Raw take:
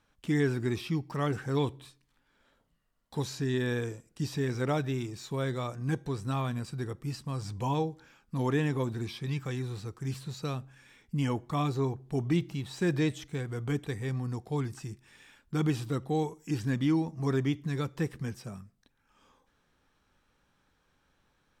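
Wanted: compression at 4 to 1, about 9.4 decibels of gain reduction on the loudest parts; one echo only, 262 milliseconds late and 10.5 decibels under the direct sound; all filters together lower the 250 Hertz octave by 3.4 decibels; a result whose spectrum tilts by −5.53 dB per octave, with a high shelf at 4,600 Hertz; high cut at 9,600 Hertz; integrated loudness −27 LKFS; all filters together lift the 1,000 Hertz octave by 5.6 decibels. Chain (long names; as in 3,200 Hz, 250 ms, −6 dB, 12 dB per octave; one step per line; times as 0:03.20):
low-pass filter 9,600 Hz
parametric band 250 Hz −5.5 dB
parametric band 1,000 Hz +7 dB
high-shelf EQ 4,600 Hz +5 dB
downward compressor 4 to 1, threshold −35 dBFS
single-tap delay 262 ms −10.5 dB
level +12 dB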